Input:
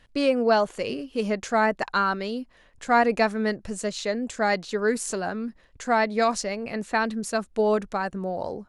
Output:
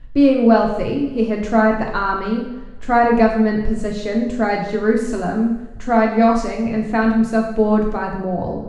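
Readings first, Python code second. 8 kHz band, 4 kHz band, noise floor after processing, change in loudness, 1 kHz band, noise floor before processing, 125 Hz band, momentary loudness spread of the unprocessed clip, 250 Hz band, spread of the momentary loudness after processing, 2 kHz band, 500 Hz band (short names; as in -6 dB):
-6.0 dB, -2.0 dB, -31 dBFS, +7.5 dB, +5.5 dB, -57 dBFS, +11.0 dB, 10 LU, +12.5 dB, 9 LU, +3.0 dB, +6.5 dB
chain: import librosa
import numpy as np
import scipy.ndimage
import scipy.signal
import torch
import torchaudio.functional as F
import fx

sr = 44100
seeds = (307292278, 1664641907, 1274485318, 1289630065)

y = fx.riaa(x, sr, side='playback')
y = fx.rev_double_slope(y, sr, seeds[0], early_s=0.75, late_s=1.9, knee_db=-18, drr_db=-0.5)
y = y * librosa.db_to_amplitude(1.0)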